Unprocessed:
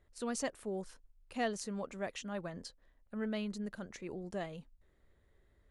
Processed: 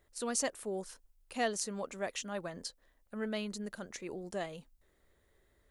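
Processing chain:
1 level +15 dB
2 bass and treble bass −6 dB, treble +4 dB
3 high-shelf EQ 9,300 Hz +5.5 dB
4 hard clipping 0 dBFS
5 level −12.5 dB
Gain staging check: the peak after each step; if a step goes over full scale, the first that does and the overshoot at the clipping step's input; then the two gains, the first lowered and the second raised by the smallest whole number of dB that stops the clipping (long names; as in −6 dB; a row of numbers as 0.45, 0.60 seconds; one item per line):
−7.5, −5.0, −3.0, −3.0, −15.5 dBFS
no step passes full scale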